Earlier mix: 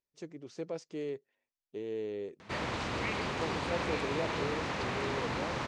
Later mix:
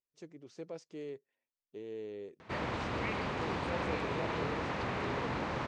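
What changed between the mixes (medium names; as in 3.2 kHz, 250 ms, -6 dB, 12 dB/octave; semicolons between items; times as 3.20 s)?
speech -5.5 dB; background: add treble shelf 4 kHz -11.5 dB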